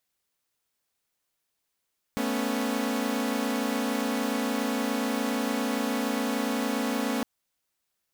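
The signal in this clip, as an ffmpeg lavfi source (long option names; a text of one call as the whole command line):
ffmpeg -f lavfi -i "aevalsrc='0.0398*((2*mod(220*t,1)-1)+(2*mod(246.94*t,1)-1)+(2*mod(277.18*t,1)-1))':duration=5.06:sample_rate=44100" out.wav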